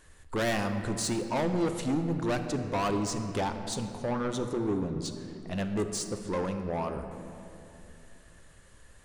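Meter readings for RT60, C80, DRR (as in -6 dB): 2.9 s, 8.5 dB, 6.0 dB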